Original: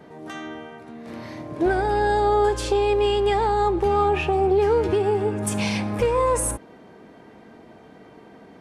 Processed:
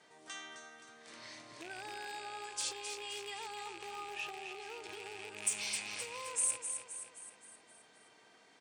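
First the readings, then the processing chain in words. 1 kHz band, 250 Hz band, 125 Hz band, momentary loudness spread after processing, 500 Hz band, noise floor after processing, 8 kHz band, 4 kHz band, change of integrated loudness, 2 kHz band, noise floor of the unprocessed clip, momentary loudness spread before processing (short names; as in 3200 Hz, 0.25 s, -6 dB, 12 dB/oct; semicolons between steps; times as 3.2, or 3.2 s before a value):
-23.0 dB, -30.5 dB, -36.0 dB, 19 LU, -29.5 dB, -64 dBFS, -3.5 dB, -8.5 dB, -18.5 dB, -12.0 dB, -48 dBFS, 17 LU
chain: rattling part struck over -26 dBFS, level -22 dBFS; compressor 8:1, threshold -26 dBFS, peak gain reduction 10.5 dB; steep low-pass 9600 Hz 96 dB/oct; bell 120 Hz +8 dB 0.43 oct; feedback echo 0.262 s, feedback 51%, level -7.5 dB; hard clip -21 dBFS, distortion -26 dB; differentiator; gain +2.5 dB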